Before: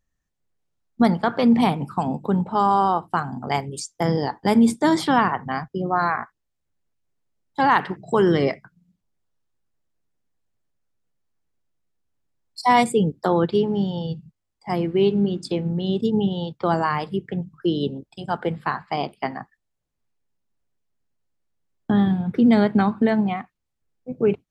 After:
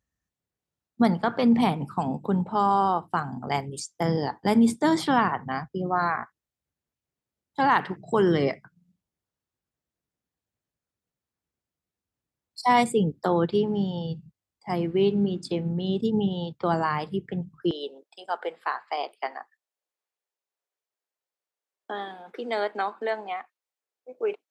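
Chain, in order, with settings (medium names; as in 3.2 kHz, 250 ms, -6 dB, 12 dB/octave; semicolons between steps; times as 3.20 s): high-pass 51 Hz 24 dB/octave, from 17.71 s 440 Hz; trim -3.5 dB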